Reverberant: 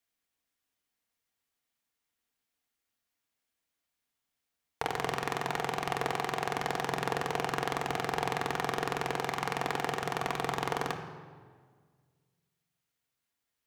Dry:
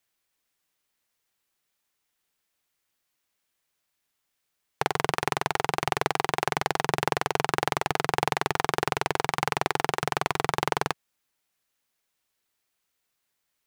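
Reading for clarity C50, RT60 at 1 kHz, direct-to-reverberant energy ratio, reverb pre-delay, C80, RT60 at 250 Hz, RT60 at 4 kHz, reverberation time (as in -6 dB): 8.0 dB, 1.6 s, 3.0 dB, 3 ms, 9.5 dB, 2.2 s, 1.2 s, 1.7 s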